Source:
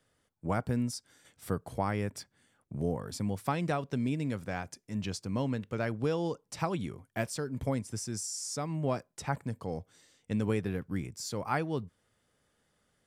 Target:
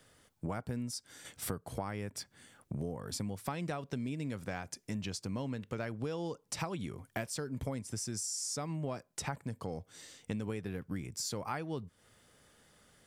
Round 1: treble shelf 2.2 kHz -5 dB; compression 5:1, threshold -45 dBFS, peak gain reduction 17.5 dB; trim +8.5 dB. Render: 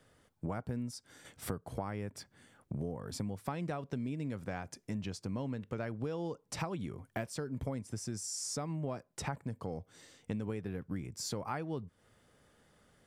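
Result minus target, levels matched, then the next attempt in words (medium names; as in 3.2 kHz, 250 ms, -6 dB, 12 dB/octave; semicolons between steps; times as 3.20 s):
4 kHz band -2.5 dB
treble shelf 2.2 kHz +3 dB; compression 5:1, threshold -45 dBFS, peak gain reduction 18 dB; trim +8.5 dB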